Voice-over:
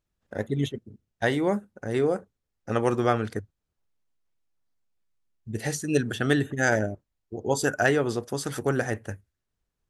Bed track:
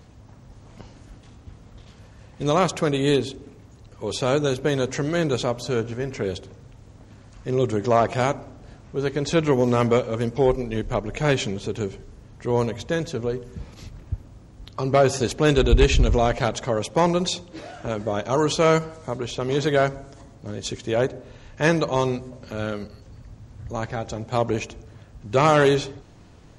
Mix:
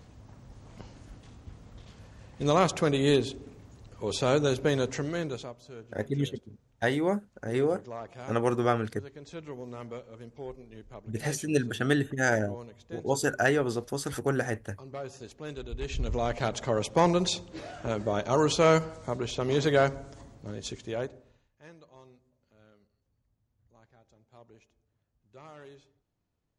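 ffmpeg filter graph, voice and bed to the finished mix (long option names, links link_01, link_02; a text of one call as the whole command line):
ffmpeg -i stem1.wav -i stem2.wav -filter_complex "[0:a]adelay=5600,volume=-2.5dB[link_01];[1:a]volume=14.5dB,afade=type=out:start_time=4.69:duration=0.87:silence=0.125893,afade=type=in:start_time=15.78:duration=1.03:silence=0.125893,afade=type=out:start_time=20.15:duration=1.34:silence=0.0354813[link_02];[link_01][link_02]amix=inputs=2:normalize=0" out.wav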